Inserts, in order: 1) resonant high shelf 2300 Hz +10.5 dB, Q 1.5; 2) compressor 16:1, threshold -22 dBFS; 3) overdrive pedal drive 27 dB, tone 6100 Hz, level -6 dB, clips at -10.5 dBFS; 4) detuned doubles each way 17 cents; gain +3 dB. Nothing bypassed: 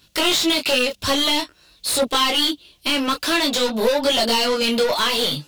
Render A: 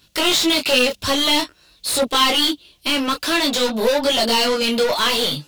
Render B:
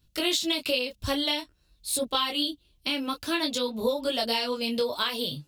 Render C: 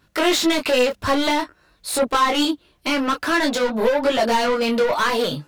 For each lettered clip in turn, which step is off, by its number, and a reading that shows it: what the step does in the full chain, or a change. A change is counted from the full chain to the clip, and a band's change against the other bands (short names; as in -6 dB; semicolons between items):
2, mean gain reduction 3.5 dB; 3, crest factor change +7.0 dB; 1, 4 kHz band -8.0 dB